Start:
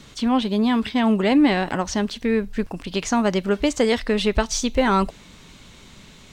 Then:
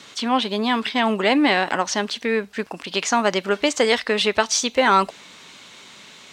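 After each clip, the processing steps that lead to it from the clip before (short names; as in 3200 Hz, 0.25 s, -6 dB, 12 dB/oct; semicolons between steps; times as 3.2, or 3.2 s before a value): weighting filter A; gain +4.5 dB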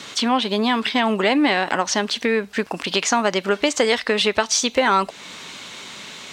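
compressor 2:1, threshold -28 dBFS, peak gain reduction 9.5 dB; gain +7.5 dB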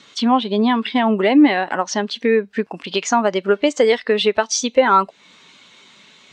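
spectral expander 1.5:1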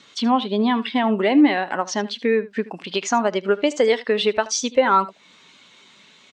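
echo 77 ms -18.5 dB; gain -3 dB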